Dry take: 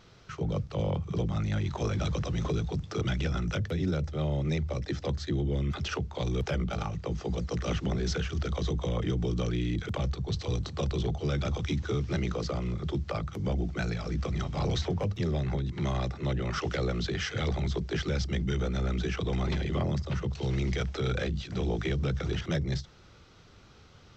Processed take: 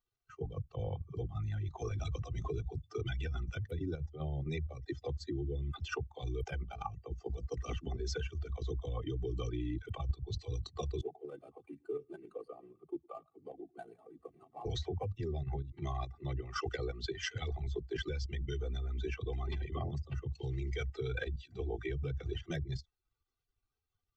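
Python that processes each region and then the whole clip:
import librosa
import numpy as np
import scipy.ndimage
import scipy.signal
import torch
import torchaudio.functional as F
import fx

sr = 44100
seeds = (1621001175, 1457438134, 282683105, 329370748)

y = fx.chain(x, sr, fx.median_filter(points=25),
    fx.bandpass_edges(low_hz=250.0, high_hz=6800.0),
    fx.echo_single(ms=109, db=-15.5), at=(11.01, 14.66))
y = fx.bin_expand(y, sr, power=2.0)
y = y + 0.74 * np.pad(y, (int(2.6 * sr / 1000.0), 0))[:len(y)]
y = fx.level_steps(y, sr, step_db=9)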